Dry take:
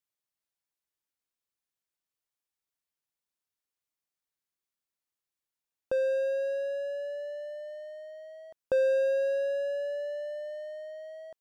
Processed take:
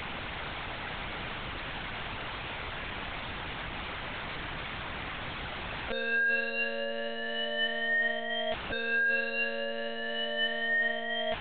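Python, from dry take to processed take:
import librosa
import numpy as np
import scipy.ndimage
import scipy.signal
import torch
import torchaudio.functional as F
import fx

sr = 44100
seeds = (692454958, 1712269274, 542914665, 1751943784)

y = np.sign(x) * np.sqrt(np.mean(np.square(x)))
y = scipy.signal.sosfilt(scipy.signal.butter(2, 2900.0, 'lowpass', fs=sr, output='sos'), y)
y = fx.lpc_monotone(y, sr, seeds[0], pitch_hz=230.0, order=10)
y = y * librosa.db_to_amplitude(8.0)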